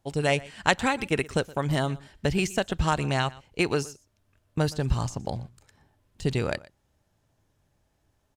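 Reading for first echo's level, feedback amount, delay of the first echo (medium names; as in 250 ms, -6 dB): -21.0 dB, no regular repeats, 120 ms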